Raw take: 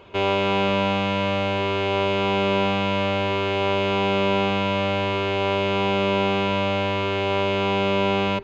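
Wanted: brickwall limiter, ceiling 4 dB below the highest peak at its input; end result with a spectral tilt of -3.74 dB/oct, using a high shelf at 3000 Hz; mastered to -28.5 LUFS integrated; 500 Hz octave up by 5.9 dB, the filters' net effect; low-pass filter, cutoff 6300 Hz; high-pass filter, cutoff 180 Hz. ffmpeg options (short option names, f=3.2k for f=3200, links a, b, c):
-af "highpass=180,lowpass=6.3k,equalizer=f=500:t=o:g=8,highshelf=f=3k:g=-8.5,volume=-8.5dB,alimiter=limit=-19.5dB:level=0:latency=1"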